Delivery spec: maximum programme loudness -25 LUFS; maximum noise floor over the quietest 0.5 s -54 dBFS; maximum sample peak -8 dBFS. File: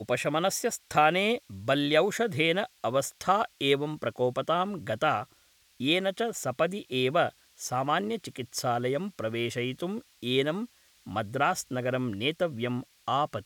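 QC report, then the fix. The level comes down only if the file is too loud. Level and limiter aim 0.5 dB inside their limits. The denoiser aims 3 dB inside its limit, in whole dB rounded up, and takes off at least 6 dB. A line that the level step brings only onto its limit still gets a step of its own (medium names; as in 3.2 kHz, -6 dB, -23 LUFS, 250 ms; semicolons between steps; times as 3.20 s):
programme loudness -28.5 LUFS: pass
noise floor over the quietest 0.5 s -63 dBFS: pass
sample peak -9.5 dBFS: pass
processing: none needed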